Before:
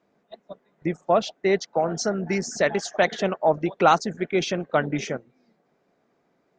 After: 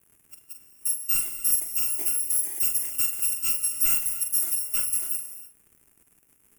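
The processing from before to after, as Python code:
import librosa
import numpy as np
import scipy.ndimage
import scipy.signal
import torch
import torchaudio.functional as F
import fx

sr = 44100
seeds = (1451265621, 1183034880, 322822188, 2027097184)

p1 = fx.bit_reversed(x, sr, seeds[0], block=256)
p2 = scipy.signal.sosfilt(scipy.signal.butter(2, 74.0, 'highpass', fs=sr, output='sos'), p1)
p3 = fx.peak_eq(p2, sr, hz=110.0, db=-11.5, octaves=2.5)
p4 = fx.doubler(p3, sr, ms=44.0, db=-8.0)
p5 = fx.fold_sine(p4, sr, drive_db=11, ceiling_db=-3.5)
p6 = p4 + (p5 * 10.0 ** (-10.0 / 20.0))
p7 = fx.dmg_crackle(p6, sr, seeds[1], per_s=170.0, level_db=-30.0)
p8 = fx.curve_eq(p7, sr, hz=(350.0, 640.0, 2600.0, 4100.0, 9200.0), db=(0, -12, -10, -25, 1))
p9 = fx.rev_gated(p8, sr, seeds[2], gate_ms=330, shape='flat', drr_db=8.5)
y = p9 * 10.0 ** (-8.5 / 20.0)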